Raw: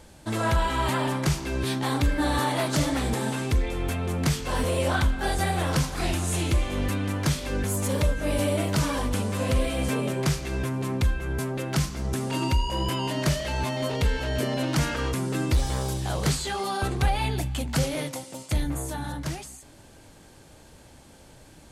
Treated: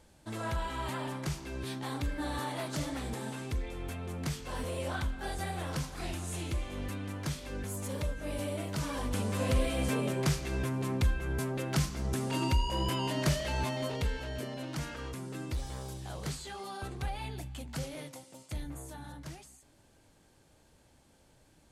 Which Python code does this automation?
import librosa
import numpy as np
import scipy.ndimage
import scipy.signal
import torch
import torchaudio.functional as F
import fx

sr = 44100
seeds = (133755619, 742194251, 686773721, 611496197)

y = fx.gain(x, sr, db=fx.line((8.75, -11.0), (9.29, -4.5), (13.6, -4.5), (14.55, -13.0)))